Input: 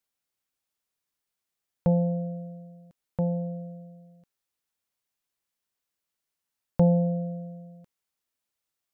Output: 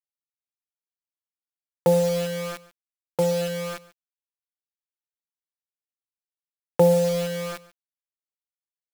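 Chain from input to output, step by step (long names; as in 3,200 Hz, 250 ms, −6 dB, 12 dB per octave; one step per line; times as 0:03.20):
high-pass filter 180 Hz 24 dB per octave
comb filter 2.3 ms, depth 91%
in parallel at −0.5 dB: downward compressor 12 to 1, threshold −34 dBFS, peak gain reduction 16.5 dB
on the sum: bit reduction 6 bits
single-tap delay 142 ms −20 dB
level +4 dB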